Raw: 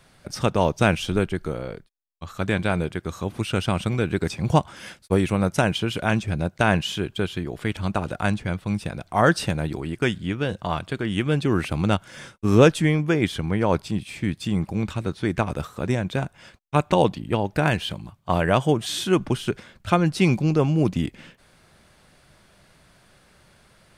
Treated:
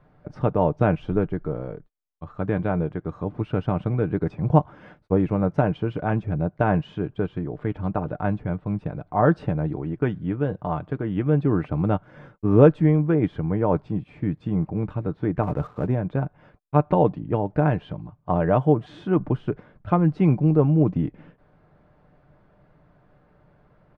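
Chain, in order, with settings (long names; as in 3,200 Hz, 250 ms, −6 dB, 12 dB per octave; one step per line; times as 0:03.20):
low-pass filter 1,000 Hz 12 dB per octave
comb filter 6.7 ms, depth 35%
0:15.43–0:15.87: leveller curve on the samples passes 1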